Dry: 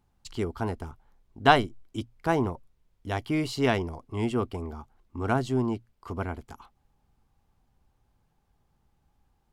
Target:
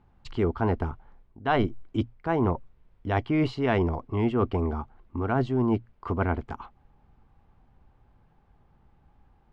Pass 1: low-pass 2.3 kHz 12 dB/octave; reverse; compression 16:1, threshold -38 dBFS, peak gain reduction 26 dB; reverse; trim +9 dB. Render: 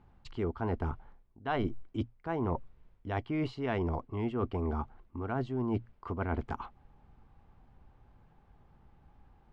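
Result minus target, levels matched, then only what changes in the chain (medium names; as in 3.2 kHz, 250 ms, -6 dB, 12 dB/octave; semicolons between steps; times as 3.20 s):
compression: peak gain reduction +8.5 dB
change: compression 16:1, threshold -29 dBFS, peak gain reduction 17.5 dB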